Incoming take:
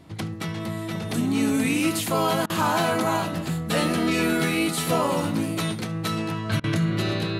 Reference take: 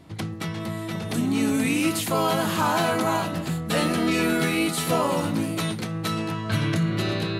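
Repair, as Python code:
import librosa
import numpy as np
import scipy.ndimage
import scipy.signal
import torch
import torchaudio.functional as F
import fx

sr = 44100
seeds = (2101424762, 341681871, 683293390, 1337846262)

y = fx.fix_interpolate(x, sr, at_s=(2.46, 6.6), length_ms=37.0)
y = fx.fix_echo_inverse(y, sr, delay_ms=73, level_db=-20.0)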